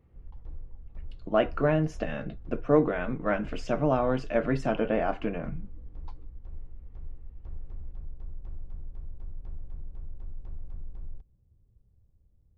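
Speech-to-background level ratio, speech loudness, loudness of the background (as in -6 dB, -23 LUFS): 18.5 dB, -28.5 LUFS, -47.0 LUFS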